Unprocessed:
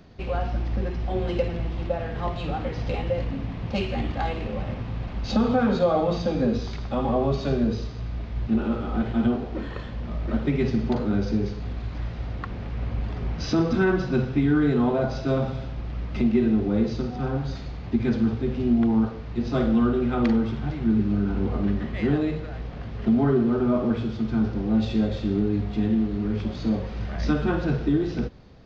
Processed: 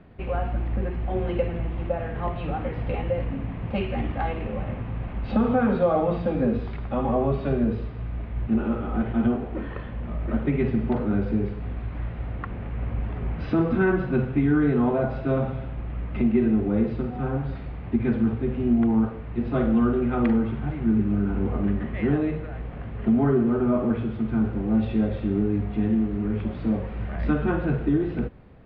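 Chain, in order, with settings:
low-pass filter 2,700 Hz 24 dB per octave

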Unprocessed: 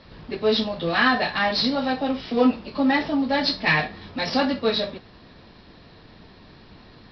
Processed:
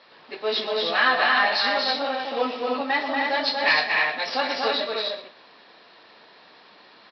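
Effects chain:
band-pass filter 590–5,300 Hz
multi-tap delay 122/237/304/417 ms −13/−4/−3.5/−18.5 dB

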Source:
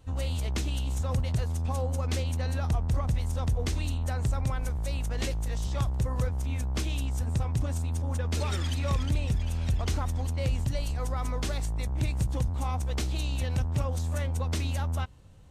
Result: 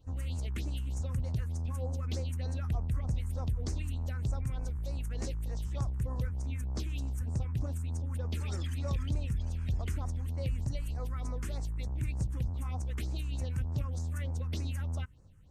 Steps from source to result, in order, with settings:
all-pass phaser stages 4, 3.3 Hz, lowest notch 620–3,300 Hz
level −6 dB

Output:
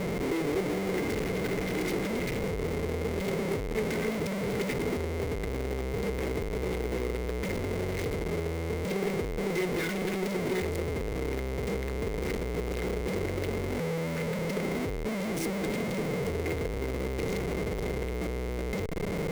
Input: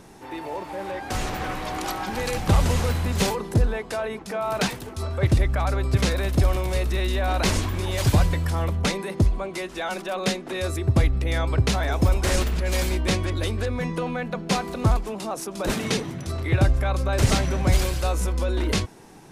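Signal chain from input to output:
low-shelf EQ 310 Hz +3 dB
soft clipping −15 dBFS, distortion −12 dB
brickwall limiter −18.5 dBFS, peak gain reduction 3.5 dB
linear-phase brick-wall band-stop 420–1,400 Hz
downward compressor 10 to 1, threshold −31 dBFS, peak gain reduction 11 dB
parametric band 180 Hz +13 dB 0.96 octaves
comparator with hysteresis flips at −41 dBFS
hollow resonant body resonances 440/2,100 Hz, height 15 dB, ringing for 30 ms
level −5 dB

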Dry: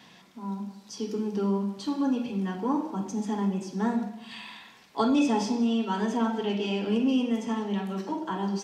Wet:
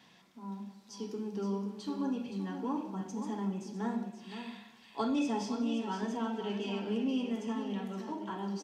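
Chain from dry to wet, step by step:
single-tap delay 519 ms −9 dB
level −8 dB

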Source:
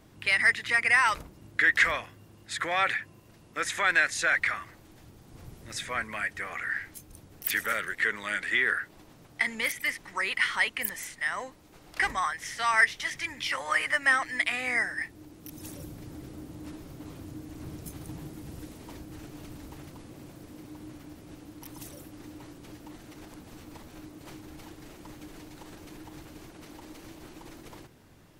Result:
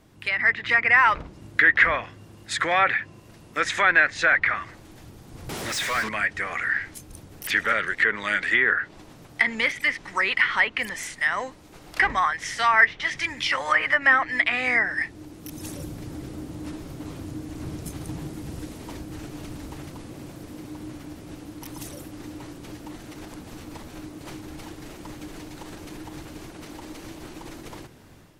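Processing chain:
treble cut that deepens with the level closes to 2,200 Hz, closed at −22.5 dBFS
automatic gain control gain up to 7 dB
0:05.49–0:06.09: mid-hump overdrive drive 29 dB, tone 7,200 Hz, clips at −22.5 dBFS

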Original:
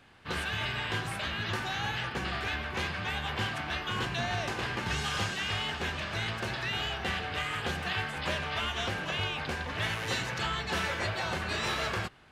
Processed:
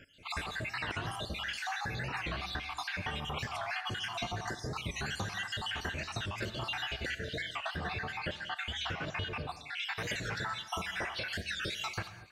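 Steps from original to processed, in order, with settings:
time-frequency cells dropped at random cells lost 64%
0:07.35–0:09.97: high-shelf EQ 5,900 Hz −11 dB
downward compressor, threshold −39 dBFS, peak gain reduction 10 dB
reverb whose tail is shaped and stops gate 260 ms flat, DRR 10.5 dB
wow of a warped record 45 rpm, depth 160 cents
level +5 dB

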